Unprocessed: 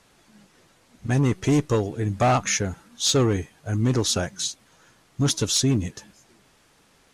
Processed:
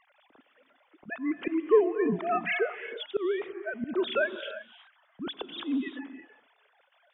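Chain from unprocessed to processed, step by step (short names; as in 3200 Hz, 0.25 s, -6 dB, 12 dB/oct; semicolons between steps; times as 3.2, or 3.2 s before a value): sine-wave speech; auto swell 0.287 s; non-linear reverb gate 0.38 s rising, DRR 10.5 dB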